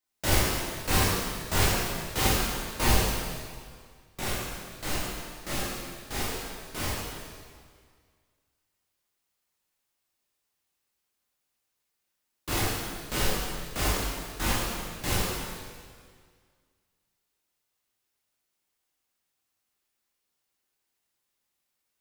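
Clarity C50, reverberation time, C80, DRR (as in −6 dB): −2.0 dB, 1.9 s, 0.0 dB, −8.5 dB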